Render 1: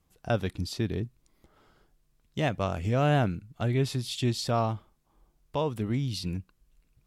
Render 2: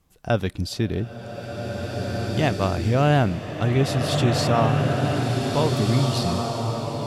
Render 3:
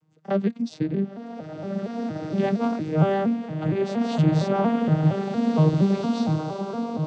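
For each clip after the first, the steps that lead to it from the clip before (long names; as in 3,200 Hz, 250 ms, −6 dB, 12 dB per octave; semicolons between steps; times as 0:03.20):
slow-attack reverb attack 1,960 ms, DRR 0.5 dB; level +5.5 dB
vocoder with an arpeggio as carrier major triad, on D#3, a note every 232 ms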